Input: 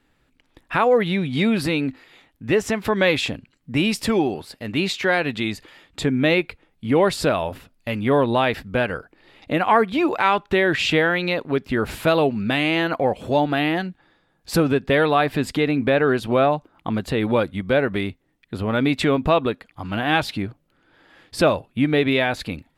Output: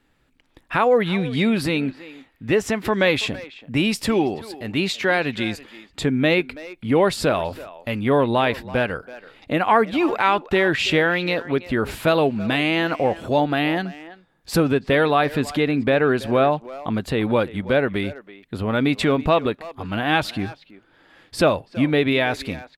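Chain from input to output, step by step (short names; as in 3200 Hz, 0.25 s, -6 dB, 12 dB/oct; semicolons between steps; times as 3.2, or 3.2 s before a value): speakerphone echo 0.33 s, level -16 dB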